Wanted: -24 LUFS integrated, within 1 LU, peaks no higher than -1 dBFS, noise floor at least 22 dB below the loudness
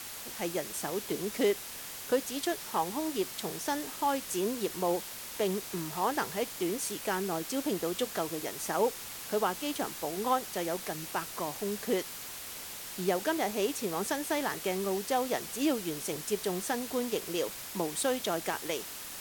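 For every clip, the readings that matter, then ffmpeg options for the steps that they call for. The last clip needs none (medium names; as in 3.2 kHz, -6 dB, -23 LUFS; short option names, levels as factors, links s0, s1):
noise floor -43 dBFS; noise floor target -55 dBFS; loudness -33.0 LUFS; peak level -16.0 dBFS; loudness target -24.0 LUFS
-> -af "afftdn=nr=12:nf=-43"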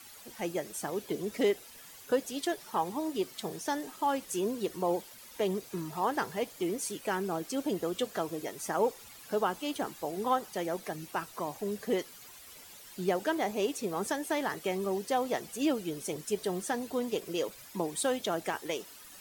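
noise floor -51 dBFS; noise floor target -56 dBFS
-> -af "afftdn=nr=6:nf=-51"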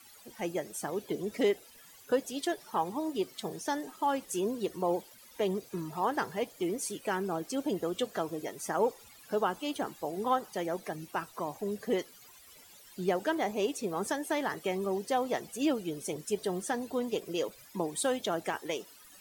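noise floor -56 dBFS; loudness -33.5 LUFS; peak level -16.5 dBFS; loudness target -24.0 LUFS
-> -af "volume=2.99"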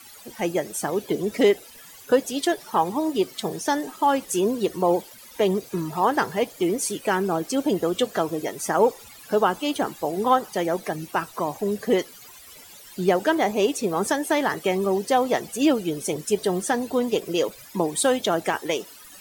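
loudness -24.0 LUFS; peak level -7.0 dBFS; noise floor -46 dBFS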